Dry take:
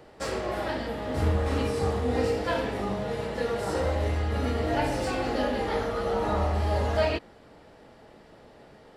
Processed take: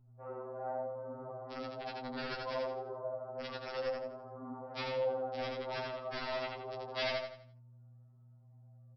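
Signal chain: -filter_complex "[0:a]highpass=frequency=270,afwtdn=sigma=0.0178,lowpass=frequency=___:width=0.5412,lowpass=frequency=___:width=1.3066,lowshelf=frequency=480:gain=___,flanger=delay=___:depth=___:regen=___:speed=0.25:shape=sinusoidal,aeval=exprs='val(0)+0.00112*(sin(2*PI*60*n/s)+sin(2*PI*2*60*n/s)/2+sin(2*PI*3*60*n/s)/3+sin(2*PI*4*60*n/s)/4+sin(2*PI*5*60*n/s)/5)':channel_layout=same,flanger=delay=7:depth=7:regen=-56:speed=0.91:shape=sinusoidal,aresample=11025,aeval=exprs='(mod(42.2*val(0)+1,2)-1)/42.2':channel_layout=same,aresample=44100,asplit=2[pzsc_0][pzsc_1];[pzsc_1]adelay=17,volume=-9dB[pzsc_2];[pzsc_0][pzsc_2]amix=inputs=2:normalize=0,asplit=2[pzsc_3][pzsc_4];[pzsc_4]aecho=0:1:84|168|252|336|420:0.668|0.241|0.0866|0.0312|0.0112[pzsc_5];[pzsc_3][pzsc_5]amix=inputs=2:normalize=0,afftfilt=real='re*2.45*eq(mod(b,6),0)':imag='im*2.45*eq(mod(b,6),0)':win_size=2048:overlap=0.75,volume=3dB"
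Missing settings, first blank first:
1100, 1100, -9, 8.4, 2.6, 46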